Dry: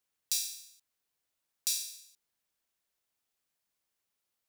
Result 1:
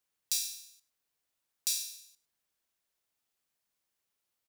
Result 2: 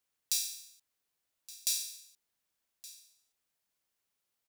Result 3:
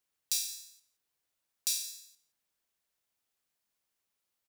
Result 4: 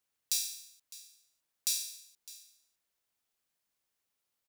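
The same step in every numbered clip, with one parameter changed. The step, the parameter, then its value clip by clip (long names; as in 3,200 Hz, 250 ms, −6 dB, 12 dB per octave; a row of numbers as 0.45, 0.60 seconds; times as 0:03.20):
single-tap delay, delay time: 103, 1,170, 171, 607 milliseconds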